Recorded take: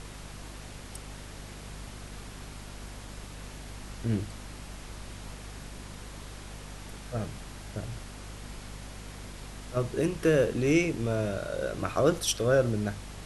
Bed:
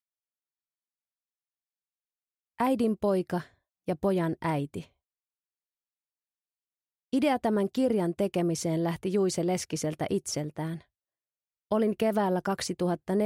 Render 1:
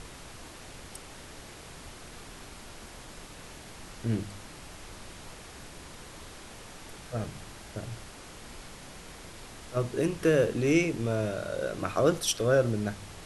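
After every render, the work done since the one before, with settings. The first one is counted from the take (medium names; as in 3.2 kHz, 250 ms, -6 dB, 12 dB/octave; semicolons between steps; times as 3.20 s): de-hum 50 Hz, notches 5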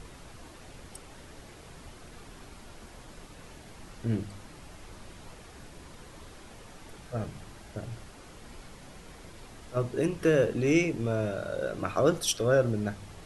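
noise reduction 6 dB, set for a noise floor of -47 dBFS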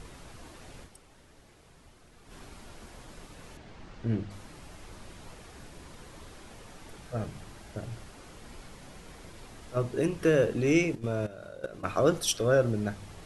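0.83–2.33 s: dip -9 dB, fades 0.41 s exponential; 3.57–4.31 s: distance through air 110 m; 10.95–11.84 s: level held to a coarse grid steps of 15 dB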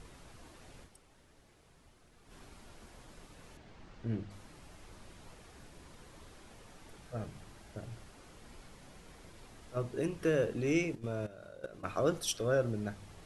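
trim -6.5 dB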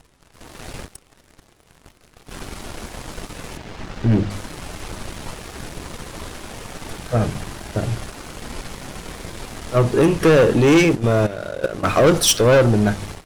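level rider gain up to 11.5 dB; waveshaping leveller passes 3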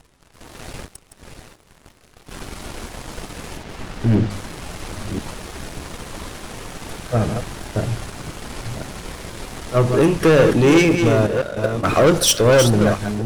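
chunks repeated in reverse 519 ms, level -7 dB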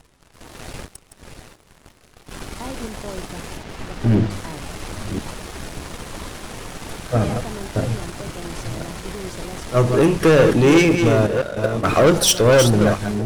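add bed -8 dB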